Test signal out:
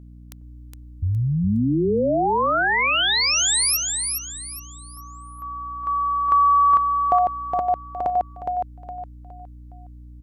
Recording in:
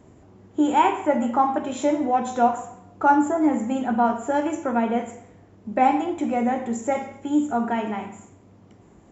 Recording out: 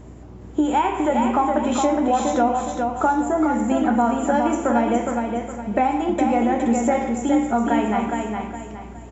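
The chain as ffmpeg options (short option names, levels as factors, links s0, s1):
-af "acompressor=threshold=0.0708:ratio=6,aeval=exprs='val(0)+0.00398*(sin(2*PI*60*n/s)+sin(2*PI*2*60*n/s)/2+sin(2*PI*3*60*n/s)/3+sin(2*PI*4*60*n/s)/4+sin(2*PI*5*60*n/s)/5)':c=same,aecho=1:1:414|828|1242|1656:0.596|0.203|0.0689|0.0234,volume=2.11"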